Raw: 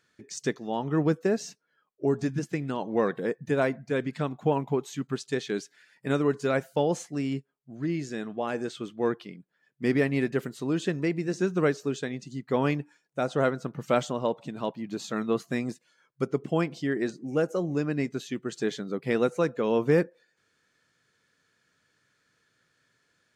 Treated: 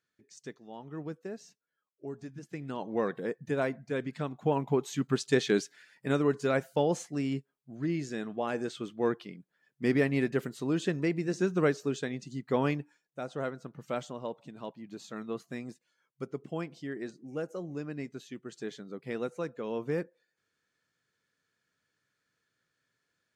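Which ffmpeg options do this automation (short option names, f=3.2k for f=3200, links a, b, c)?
-af "volume=4.5dB,afade=t=in:st=2.4:d=0.4:silence=0.316228,afade=t=in:st=4.36:d=1.12:silence=0.334965,afade=t=out:st=5.48:d=0.59:silence=0.473151,afade=t=out:st=12.53:d=0.66:silence=0.398107"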